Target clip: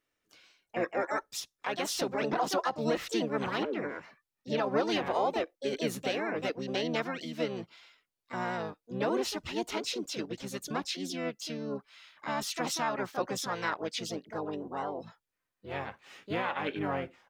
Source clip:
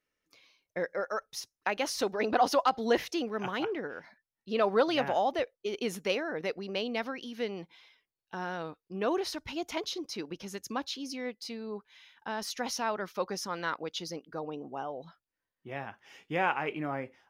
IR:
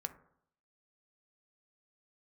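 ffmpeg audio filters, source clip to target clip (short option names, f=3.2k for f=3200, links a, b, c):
-filter_complex "[0:a]alimiter=limit=-22dB:level=0:latency=1:release=134,asplit=3[a][b][c];[b]asetrate=29433,aresample=44100,atempo=1.49831,volume=-6dB[d];[c]asetrate=58866,aresample=44100,atempo=0.749154,volume=-5dB[e];[a][d][e]amix=inputs=3:normalize=0"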